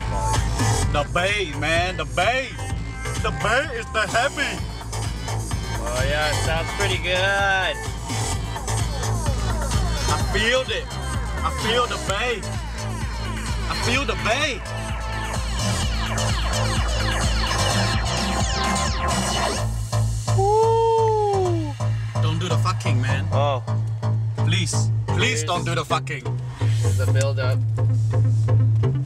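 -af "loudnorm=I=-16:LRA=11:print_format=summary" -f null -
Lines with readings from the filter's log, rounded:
Input Integrated:    -22.1 LUFS
Input True Peak:      -4.3 dBTP
Input LRA:             3.2 LU
Input Threshold:     -32.1 LUFS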